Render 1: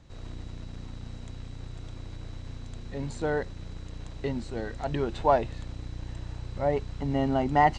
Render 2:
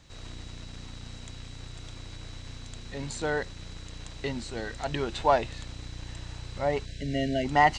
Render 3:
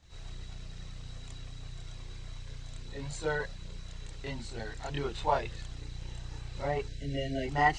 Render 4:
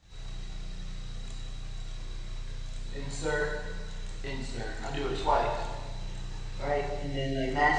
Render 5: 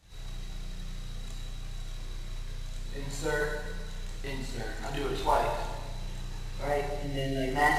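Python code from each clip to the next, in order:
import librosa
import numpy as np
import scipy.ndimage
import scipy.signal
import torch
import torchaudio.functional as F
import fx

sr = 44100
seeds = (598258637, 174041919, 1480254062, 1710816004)

y1 = fx.spec_erase(x, sr, start_s=6.85, length_s=0.6, low_hz=700.0, high_hz=1500.0)
y1 = fx.tilt_shelf(y1, sr, db=-6.0, hz=1400.0)
y1 = y1 * 10.0 ** (3.0 / 20.0)
y2 = fx.chorus_voices(y1, sr, voices=6, hz=0.63, base_ms=27, depth_ms=1.5, mix_pct=60)
y2 = y2 * 10.0 ** (-2.5 / 20.0)
y3 = fx.rev_plate(y2, sr, seeds[0], rt60_s=1.4, hf_ratio=0.85, predelay_ms=0, drr_db=-0.5)
y4 = fx.cvsd(y3, sr, bps=64000)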